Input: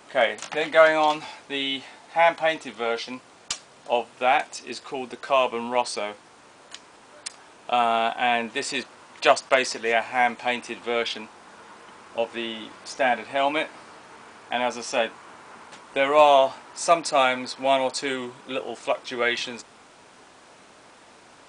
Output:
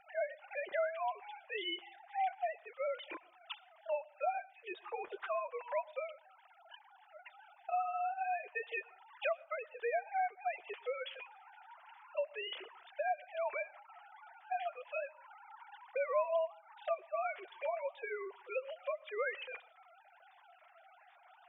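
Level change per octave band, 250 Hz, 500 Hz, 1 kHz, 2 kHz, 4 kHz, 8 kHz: under -25 dB, -14.5 dB, -15.0 dB, -17.0 dB, -19.0 dB, under -40 dB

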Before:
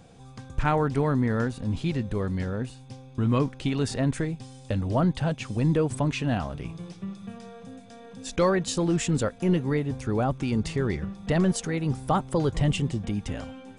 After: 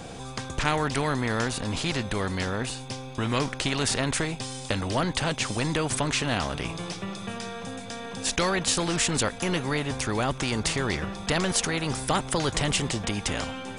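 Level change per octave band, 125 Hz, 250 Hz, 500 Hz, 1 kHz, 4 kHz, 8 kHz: -4.0, -3.5, -1.5, +2.0, +10.0, +9.5 dB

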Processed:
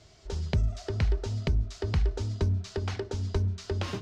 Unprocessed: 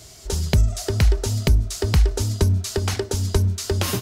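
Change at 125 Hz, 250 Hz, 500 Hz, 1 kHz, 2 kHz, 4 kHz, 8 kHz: -8.5, -9.0, -8.5, -8.5, -9.5, -13.0, -20.0 dB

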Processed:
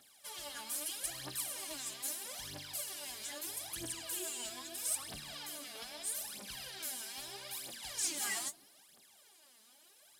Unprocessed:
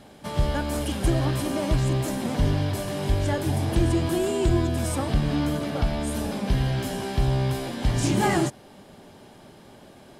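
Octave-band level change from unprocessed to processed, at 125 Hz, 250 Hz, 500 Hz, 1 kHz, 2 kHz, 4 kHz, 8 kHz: -36.5, -29.5, -24.5, -19.5, -12.0, -6.5, -0.5 dB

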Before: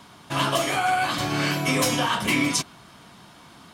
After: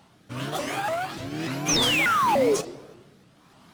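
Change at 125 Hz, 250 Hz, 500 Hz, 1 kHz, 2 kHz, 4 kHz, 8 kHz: -5.0, -3.5, +3.0, -1.0, -2.5, 0.0, -1.5 dB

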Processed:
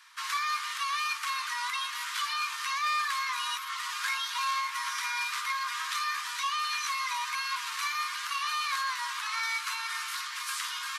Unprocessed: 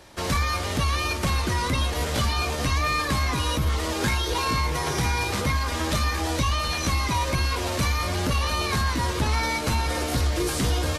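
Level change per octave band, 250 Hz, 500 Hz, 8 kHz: under -40 dB, under -35 dB, -6.0 dB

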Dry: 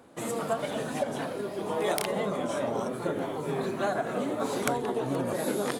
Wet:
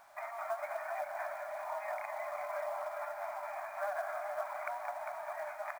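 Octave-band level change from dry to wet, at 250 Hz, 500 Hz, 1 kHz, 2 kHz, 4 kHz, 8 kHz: under -40 dB, -10.0 dB, -5.0 dB, -5.0 dB, -22.0 dB, -19.5 dB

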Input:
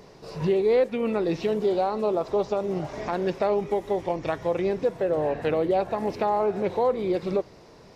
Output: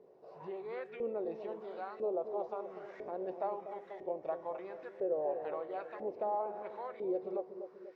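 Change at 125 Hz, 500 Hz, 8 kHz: -26.5 dB, -13.5 dB, n/a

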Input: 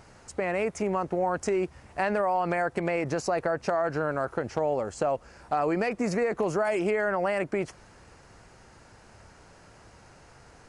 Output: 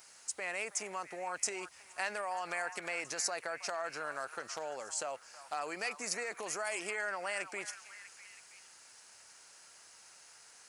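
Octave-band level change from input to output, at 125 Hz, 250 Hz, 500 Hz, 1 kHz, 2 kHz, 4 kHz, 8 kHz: -25.5, -21.0, -15.5, -10.5, -4.5, +2.5, +6.5 dB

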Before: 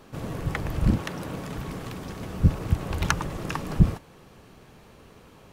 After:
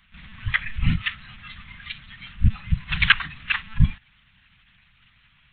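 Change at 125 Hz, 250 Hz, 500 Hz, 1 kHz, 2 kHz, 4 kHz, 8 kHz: -0.5 dB, -4.0 dB, under -25 dB, -1.5 dB, +12.0 dB, +12.0 dB, under -30 dB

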